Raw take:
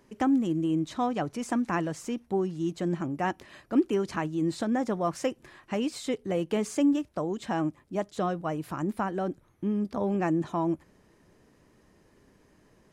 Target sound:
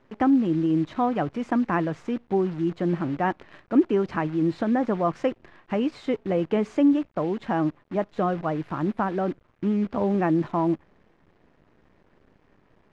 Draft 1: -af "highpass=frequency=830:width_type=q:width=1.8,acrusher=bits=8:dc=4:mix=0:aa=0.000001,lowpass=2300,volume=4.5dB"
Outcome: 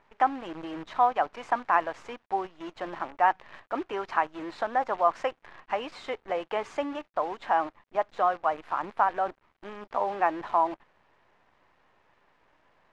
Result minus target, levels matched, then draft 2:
1,000 Hz band +8.5 dB
-af "acrusher=bits=8:dc=4:mix=0:aa=0.000001,lowpass=2300,volume=4.5dB"

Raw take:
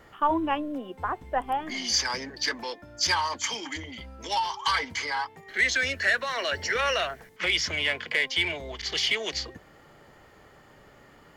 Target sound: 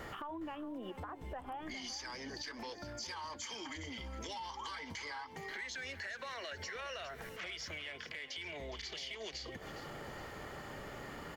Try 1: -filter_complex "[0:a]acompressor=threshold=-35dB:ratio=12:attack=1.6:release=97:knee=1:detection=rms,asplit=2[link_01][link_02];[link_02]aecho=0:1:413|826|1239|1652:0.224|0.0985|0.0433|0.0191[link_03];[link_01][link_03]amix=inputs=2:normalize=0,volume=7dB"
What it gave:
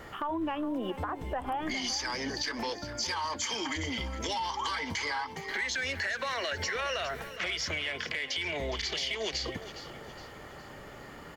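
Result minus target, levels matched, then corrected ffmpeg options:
downward compressor: peak gain reduction −11 dB
-filter_complex "[0:a]acompressor=threshold=-47dB:ratio=12:attack=1.6:release=97:knee=1:detection=rms,asplit=2[link_01][link_02];[link_02]aecho=0:1:413|826|1239|1652:0.224|0.0985|0.0433|0.0191[link_03];[link_01][link_03]amix=inputs=2:normalize=0,volume=7dB"

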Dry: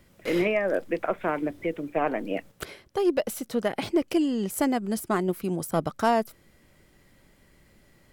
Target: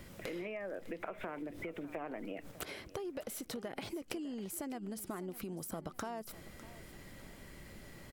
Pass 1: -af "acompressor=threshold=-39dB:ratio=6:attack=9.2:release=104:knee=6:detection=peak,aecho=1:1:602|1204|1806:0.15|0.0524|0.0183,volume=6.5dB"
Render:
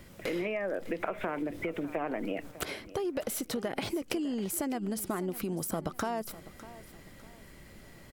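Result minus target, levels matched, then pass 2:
downward compressor: peak gain reduction −9 dB
-af "acompressor=threshold=-49.5dB:ratio=6:attack=9.2:release=104:knee=6:detection=peak,aecho=1:1:602|1204|1806:0.15|0.0524|0.0183,volume=6.5dB"

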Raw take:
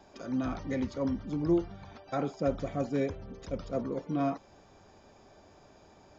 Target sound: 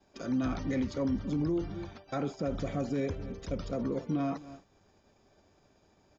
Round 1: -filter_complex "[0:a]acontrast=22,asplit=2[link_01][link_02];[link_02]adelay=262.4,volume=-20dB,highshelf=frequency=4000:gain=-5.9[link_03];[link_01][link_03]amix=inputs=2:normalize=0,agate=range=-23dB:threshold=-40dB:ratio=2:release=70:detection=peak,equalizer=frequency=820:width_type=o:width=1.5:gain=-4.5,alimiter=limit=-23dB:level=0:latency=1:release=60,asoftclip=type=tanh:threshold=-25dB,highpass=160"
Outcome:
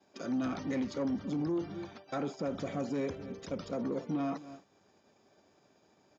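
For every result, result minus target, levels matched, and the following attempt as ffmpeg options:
soft clipping: distortion +18 dB; 125 Hz band −4.0 dB
-filter_complex "[0:a]acontrast=22,asplit=2[link_01][link_02];[link_02]adelay=262.4,volume=-20dB,highshelf=frequency=4000:gain=-5.9[link_03];[link_01][link_03]amix=inputs=2:normalize=0,agate=range=-23dB:threshold=-40dB:ratio=2:release=70:detection=peak,equalizer=frequency=820:width_type=o:width=1.5:gain=-4.5,alimiter=limit=-23dB:level=0:latency=1:release=60,asoftclip=type=tanh:threshold=-15dB,highpass=160"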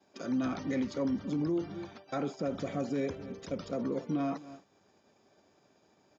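125 Hz band −4.0 dB
-filter_complex "[0:a]acontrast=22,asplit=2[link_01][link_02];[link_02]adelay=262.4,volume=-20dB,highshelf=frequency=4000:gain=-5.9[link_03];[link_01][link_03]amix=inputs=2:normalize=0,agate=range=-23dB:threshold=-40dB:ratio=2:release=70:detection=peak,equalizer=frequency=820:width_type=o:width=1.5:gain=-4.5,alimiter=limit=-23dB:level=0:latency=1:release=60,asoftclip=type=tanh:threshold=-15dB"

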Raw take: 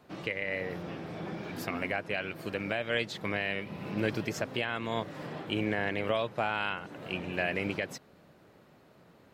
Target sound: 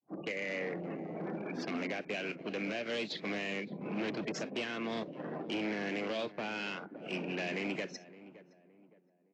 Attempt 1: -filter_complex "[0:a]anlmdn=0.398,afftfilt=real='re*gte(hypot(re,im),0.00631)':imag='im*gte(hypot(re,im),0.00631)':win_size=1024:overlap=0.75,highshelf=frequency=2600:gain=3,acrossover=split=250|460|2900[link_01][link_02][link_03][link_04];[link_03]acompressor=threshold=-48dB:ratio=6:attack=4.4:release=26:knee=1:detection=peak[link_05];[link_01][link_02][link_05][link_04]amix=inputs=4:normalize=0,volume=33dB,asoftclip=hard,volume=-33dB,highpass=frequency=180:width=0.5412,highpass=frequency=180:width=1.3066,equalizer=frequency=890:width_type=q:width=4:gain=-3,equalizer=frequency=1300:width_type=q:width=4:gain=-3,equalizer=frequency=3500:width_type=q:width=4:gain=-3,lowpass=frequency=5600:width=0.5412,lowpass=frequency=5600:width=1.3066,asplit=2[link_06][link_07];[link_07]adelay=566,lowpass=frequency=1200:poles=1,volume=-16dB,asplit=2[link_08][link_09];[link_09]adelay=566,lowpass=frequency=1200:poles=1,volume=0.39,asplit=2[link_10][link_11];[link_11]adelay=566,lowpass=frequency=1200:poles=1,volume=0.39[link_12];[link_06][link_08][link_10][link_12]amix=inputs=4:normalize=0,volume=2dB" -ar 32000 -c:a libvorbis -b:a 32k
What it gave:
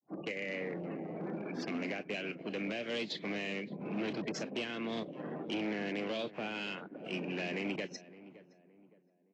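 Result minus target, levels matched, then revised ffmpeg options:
downward compressor: peak gain reduction +5.5 dB
-filter_complex "[0:a]anlmdn=0.398,afftfilt=real='re*gte(hypot(re,im),0.00631)':imag='im*gte(hypot(re,im),0.00631)':win_size=1024:overlap=0.75,highshelf=frequency=2600:gain=3,acrossover=split=250|460|2900[link_01][link_02][link_03][link_04];[link_03]acompressor=threshold=-41.5dB:ratio=6:attack=4.4:release=26:knee=1:detection=peak[link_05];[link_01][link_02][link_05][link_04]amix=inputs=4:normalize=0,volume=33dB,asoftclip=hard,volume=-33dB,highpass=frequency=180:width=0.5412,highpass=frequency=180:width=1.3066,equalizer=frequency=890:width_type=q:width=4:gain=-3,equalizer=frequency=1300:width_type=q:width=4:gain=-3,equalizer=frequency=3500:width_type=q:width=4:gain=-3,lowpass=frequency=5600:width=0.5412,lowpass=frequency=5600:width=1.3066,asplit=2[link_06][link_07];[link_07]adelay=566,lowpass=frequency=1200:poles=1,volume=-16dB,asplit=2[link_08][link_09];[link_09]adelay=566,lowpass=frequency=1200:poles=1,volume=0.39,asplit=2[link_10][link_11];[link_11]adelay=566,lowpass=frequency=1200:poles=1,volume=0.39[link_12];[link_06][link_08][link_10][link_12]amix=inputs=4:normalize=0,volume=2dB" -ar 32000 -c:a libvorbis -b:a 32k

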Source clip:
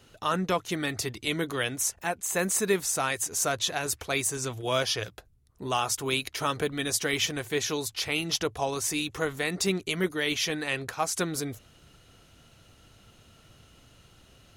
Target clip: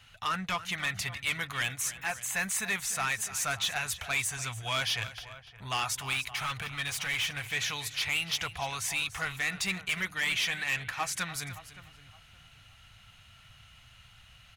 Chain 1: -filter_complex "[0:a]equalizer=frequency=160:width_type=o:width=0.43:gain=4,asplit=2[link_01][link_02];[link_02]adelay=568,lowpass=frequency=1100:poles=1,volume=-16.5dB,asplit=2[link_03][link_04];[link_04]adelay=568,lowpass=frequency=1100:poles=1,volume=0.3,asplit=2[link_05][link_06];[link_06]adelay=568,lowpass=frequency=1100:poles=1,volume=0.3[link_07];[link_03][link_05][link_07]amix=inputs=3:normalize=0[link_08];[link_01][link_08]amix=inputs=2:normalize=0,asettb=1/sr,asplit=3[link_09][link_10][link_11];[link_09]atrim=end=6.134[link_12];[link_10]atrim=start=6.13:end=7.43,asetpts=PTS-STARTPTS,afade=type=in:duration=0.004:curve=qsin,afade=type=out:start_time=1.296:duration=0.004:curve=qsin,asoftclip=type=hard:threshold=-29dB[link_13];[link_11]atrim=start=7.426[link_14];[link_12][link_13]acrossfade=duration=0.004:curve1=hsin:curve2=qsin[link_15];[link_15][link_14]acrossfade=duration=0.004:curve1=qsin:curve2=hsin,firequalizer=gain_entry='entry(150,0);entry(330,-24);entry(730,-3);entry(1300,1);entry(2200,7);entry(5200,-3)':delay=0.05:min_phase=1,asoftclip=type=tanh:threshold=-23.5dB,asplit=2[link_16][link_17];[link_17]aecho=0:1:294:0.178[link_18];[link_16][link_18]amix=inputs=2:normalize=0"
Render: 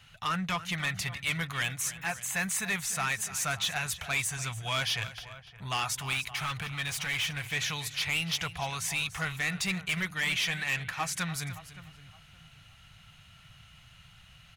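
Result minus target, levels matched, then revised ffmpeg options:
125 Hz band +4.5 dB
-filter_complex "[0:a]equalizer=frequency=160:width_type=o:width=0.43:gain=-6,asplit=2[link_01][link_02];[link_02]adelay=568,lowpass=frequency=1100:poles=1,volume=-16.5dB,asplit=2[link_03][link_04];[link_04]adelay=568,lowpass=frequency=1100:poles=1,volume=0.3,asplit=2[link_05][link_06];[link_06]adelay=568,lowpass=frequency=1100:poles=1,volume=0.3[link_07];[link_03][link_05][link_07]amix=inputs=3:normalize=0[link_08];[link_01][link_08]amix=inputs=2:normalize=0,asettb=1/sr,asplit=3[link_09][link_10][link_11];[link_09]atrim=end=6.134[link_12];[link_10]atrim=start=6.13:end=7.43,asetpts=PTS-STARTPTS,afade=type=in:duration=0.004:curve=qsin,afade=type=out:start_time=1.296:duration=0.004:curve=qsin,asoftclip=type=hard:threshold=-29dB[link_13];[link_11]atrim=start=7.426[link_14];[link_12][link_13]acrossfade=duration=0.004:curve1=hsin:curve2=qsin[link_15];[link_15][link_14]acrossfade=duration=0.004:curve1=qsin:curve2=hsin,firequalizer=gain_entry='entry(150,0);entry(330,-24);entry(730,-3);entry(1300,1);entry(2200,7);entry(5200,-3)':delay=0.05:min_phase=1,asoftclip=type=tanh:threshold=-23.5dB,asplit=2[link_16][link_17];[link_17]aecho=0:1:294:0.178[link_18];[link_16][link_18]amix=inputs=2:normalize=0"

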